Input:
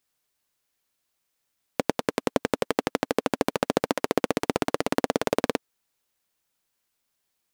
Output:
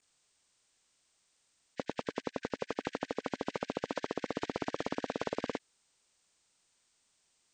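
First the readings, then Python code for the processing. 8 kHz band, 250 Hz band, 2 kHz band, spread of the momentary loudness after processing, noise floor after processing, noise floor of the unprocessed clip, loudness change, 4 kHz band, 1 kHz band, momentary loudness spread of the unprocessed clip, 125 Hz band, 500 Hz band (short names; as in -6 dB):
-15.5 dB, -11.0 dB, -11.5 dB, 4 LU, -75 dBFS, -78 dBFS, -11.0 dB, -11.5 dB, -11.0 dB, 4 LU, -11.0 dB, -11.0 dB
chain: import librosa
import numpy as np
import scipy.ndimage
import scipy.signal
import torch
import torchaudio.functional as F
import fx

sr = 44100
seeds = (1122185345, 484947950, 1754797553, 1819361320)

y = fx.freq_compress(x, sr, knee_hz=1500.0, ratio=1.5)
y = fx.level_steps(y, sr, step_db=20)
y = y * librosa.db_to_amplitude(5.5)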